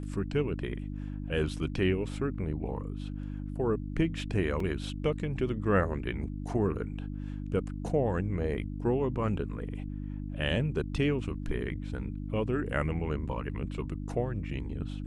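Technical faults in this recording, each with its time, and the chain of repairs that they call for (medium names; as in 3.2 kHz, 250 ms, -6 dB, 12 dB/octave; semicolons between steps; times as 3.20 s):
hum 50 Hz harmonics 6 -37 dBFS
4.60 s: dropout 3 ms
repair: de-hum 50 Hz, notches 6; interpolate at 4.60 s, 3 ms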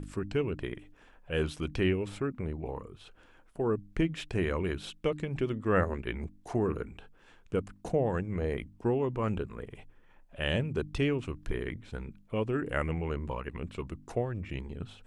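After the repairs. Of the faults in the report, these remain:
nothing left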